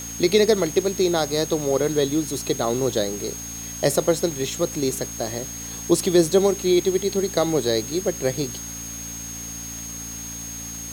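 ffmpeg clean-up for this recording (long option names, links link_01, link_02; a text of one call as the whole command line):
ffmpeg -i in.wav -af "adeclick=threshold=4,bandreject=frequency=56.8:width_type=h:width=4,bandreject=frequency=113.6:width_type=h:width=4,bandreject=frequency=170.4:width_type=h:width=4,bandreject=frequency=227.2:width_type=h:width=4,bandreject=frequency=284:width_type=h:width=4,bandreject=frequency=6500:width=30,afwtdn=0.01" out.wav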